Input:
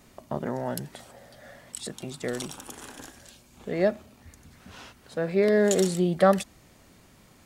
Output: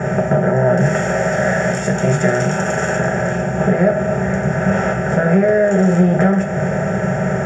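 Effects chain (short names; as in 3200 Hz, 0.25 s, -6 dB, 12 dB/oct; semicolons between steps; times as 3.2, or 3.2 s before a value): per-bin compression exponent 0.4; 0.8–2.97 high shelf 2400 Hz +10 dB; compressor 6:1, threshold -23 dBFS, peak gain reduction 11.5 dB; air absorption 100 m; fixed phaser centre 1100 Hz, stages 6; reverb RT60 0.45 s, pre-delay 3 ms, DRR 0 dB; mismatched tape noise reduction decoder only; gain +3 dB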